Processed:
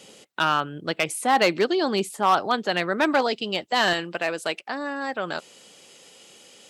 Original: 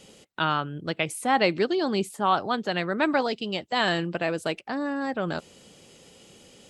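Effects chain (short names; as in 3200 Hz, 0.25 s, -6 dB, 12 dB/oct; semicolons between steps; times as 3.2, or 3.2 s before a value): hard clip -15.5 dBFS, distortion -18 dB; HPF 310 Hz 6 dB/oct, from 3.93 s 750 Hz; gain +4.5 dB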